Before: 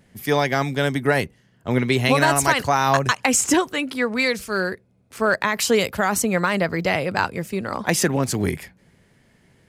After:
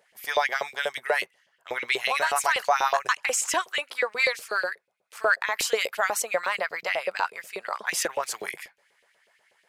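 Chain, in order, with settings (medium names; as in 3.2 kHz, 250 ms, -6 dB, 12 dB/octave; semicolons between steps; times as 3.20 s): peaking EQ 270 Hz -14.5 dB 0.44 oct; peak limiter -10 dBFS, peak gain reduction 7.5 dB; LFO high-pass saw up 8.2 Hz 450–3100 Hz; trim -5 dB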